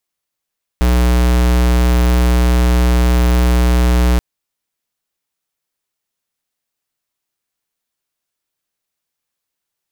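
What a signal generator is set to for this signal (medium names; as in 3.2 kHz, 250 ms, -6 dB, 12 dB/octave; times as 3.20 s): tone square 60.8 Hz -11.5 dBFS 3.38 s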